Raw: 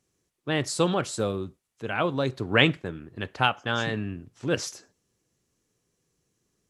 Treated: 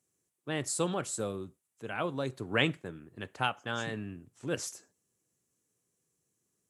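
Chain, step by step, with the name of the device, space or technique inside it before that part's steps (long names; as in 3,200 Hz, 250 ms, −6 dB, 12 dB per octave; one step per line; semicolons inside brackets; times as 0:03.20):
budget condenser microphone (high-pass filter 91 Hz; high shelf with overshoot 6,400 Hz +7 dB, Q 1.5)
level −7.5 dB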